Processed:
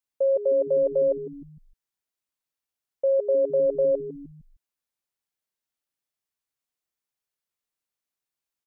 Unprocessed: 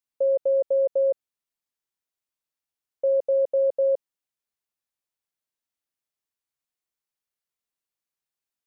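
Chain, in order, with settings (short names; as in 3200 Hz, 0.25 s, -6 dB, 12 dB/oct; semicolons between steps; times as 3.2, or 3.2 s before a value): frequency-shifting echo 0.153 s, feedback 44%, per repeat -130 Hz, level -13 dB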